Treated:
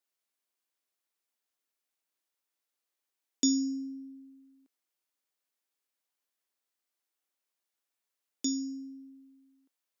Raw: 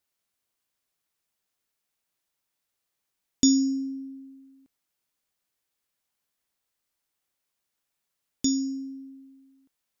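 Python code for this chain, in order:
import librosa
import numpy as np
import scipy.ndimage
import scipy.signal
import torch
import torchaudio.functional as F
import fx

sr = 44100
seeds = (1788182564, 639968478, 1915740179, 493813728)

y = scipy.signal.sosfilt(scipy.signal.butter(4, 240.0, 'highpass', fs=sr, output='sos'), x)
y = y * 10.0 ** (-5.5 / 20.0)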